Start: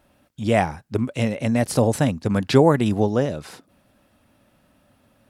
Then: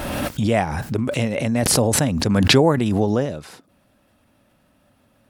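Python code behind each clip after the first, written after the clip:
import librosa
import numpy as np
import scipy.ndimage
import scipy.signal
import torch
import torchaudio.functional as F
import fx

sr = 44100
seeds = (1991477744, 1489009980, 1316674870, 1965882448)

y = fx.pre_swell(x, sr, db_per_s=22.0)
y = y * librosa.db_to_amplitude(-1.0)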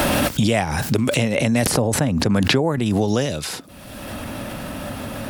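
y = fx.band_squash(x, sr, depth_pct=100)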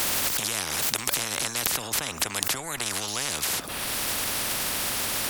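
y = fx.spectral_comp(x, sr, ratio=10.0)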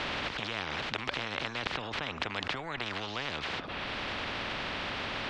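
y = scipy.signal.sosfilt(scipy.signal.butter(4, 3500.0, 'lowpass', fs=sr, output='sos'), x)
y = y * librosa.db_to_amplitude(-2.5)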